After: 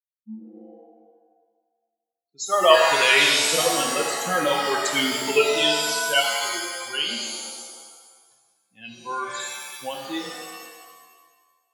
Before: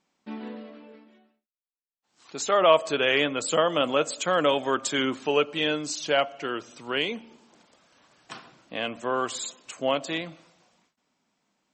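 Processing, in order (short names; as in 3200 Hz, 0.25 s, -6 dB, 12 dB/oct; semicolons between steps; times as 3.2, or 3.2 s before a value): per-bin expansion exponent 3; dynamic EQ 2700 Hz, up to +8 dB, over -45 dBFS, Q 0.88; shimmer reverb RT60 1.4 s, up +7 st, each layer -2 dB, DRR 1.5 dB; gain +3.5 dB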